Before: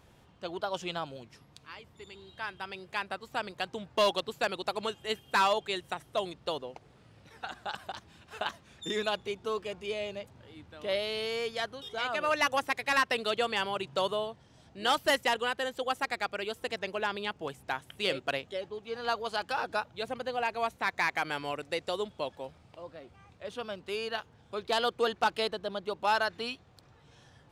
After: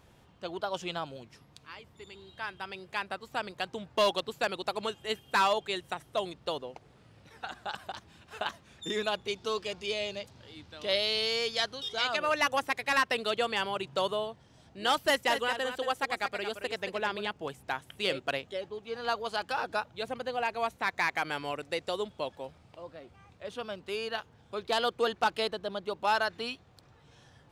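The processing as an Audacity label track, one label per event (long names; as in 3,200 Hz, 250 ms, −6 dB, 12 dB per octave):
9.280000	12.170000	parametric band 4,800 Hz +11 dB 1.4 octaves
15.060000	17.270000	single-tap delay 225 ms −9 dB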